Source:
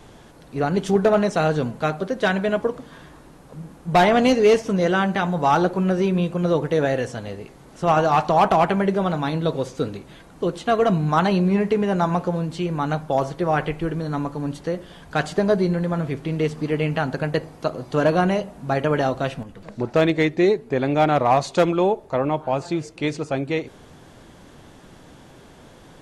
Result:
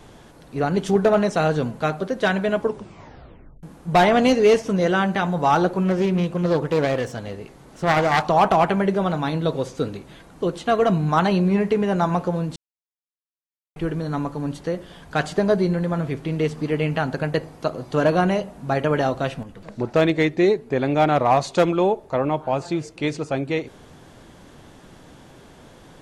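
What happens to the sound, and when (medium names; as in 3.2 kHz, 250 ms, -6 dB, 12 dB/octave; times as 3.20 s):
2.62 s: tape stop 1.01 s
5.85–8.27 s: self-modulated delay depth 0.22 ms
12.56–13.76 s: mute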